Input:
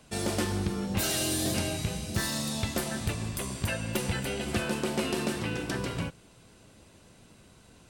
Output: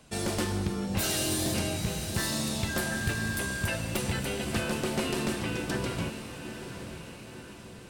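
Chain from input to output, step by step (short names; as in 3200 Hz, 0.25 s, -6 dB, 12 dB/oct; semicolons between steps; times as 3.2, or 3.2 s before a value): one-sided fold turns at -23.5 dBFS; diffused feedback echo 0.944 s, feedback 51%, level -9.5 dB; 2.68–3.71 whine 1600 Hz -34 dBFS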